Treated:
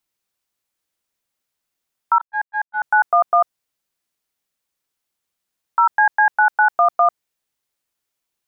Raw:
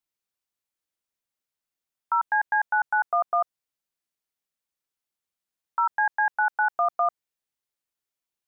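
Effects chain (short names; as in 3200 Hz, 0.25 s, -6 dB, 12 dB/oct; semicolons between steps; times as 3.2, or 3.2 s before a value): 2.18–2.82 gate -20 dBFS, range -41 dB; gain +8.5 dB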